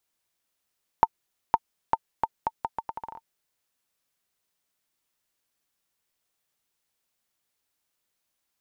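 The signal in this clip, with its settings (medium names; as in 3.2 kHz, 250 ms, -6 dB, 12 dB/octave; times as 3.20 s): bouncing ball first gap 0.51 s, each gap 0.77, 904 Hz, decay 43 ms -4.5 dBFS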